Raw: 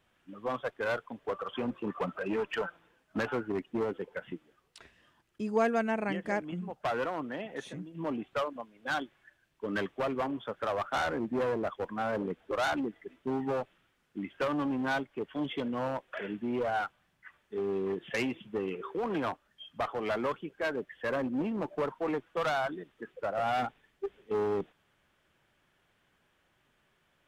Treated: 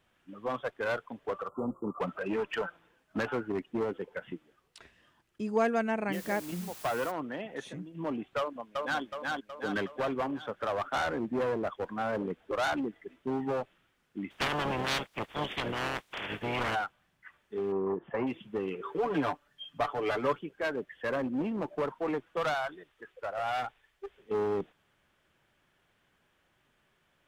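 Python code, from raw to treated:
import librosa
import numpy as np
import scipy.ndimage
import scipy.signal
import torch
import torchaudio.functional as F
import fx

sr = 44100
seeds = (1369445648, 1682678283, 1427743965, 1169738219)

y = fx.spec_erase(x, sr, start_s=1.48, length_s=0.52, low_hz=1400.0, high_hz=6900.0)
y = fx.quant_dither(y, sr, seeds[0], bits=8, dither='triangular', at=(6.12, 7.1), fade=0.02)
y = fx.echo_throw(y, sr, start_s=8.38, length_s=0.65, ms=370, feedback_pct=55, wet_db=-2.0)
y = fx.spec_clip(y, sr, under_db=26, at=(14.3, 16.74), fade=0.02)
y = fx.lowpass_res(y, sr, hz=1000.0, q=2.6, at=(17.72, 18.27))
y = fx.comb(y, sr, ms=6.9, depth=0.77, at=(18.85, 20.39))
y = fx.peak_eq(y, sr, hz=220.0, db=-14.0, octaves=1.7, at=(22.54, 24.18))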